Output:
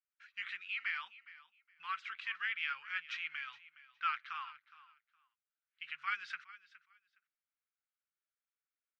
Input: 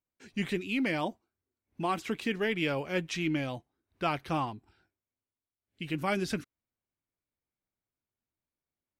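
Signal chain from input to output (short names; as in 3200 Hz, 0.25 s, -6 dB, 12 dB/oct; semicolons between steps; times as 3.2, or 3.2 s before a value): elliptic high-pass 1300 Hz, stop band 50 dB; tape spacing loss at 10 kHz 43 dB; feedback echo 0.415 s, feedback 19%, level -18 dB; gain +7.5 dB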